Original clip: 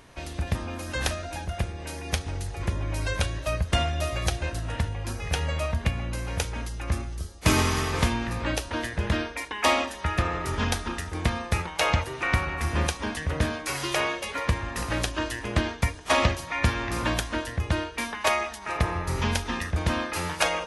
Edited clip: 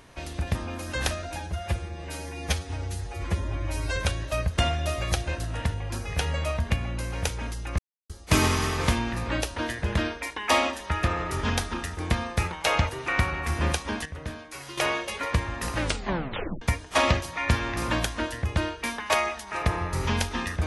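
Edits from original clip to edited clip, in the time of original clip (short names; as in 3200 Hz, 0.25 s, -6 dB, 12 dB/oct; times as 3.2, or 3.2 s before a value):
1.4–3.11 stretch 1.5×
6.93–7.24 mute
13.2–13.92 gain -10 dB
14.94 tape stop 0.82 s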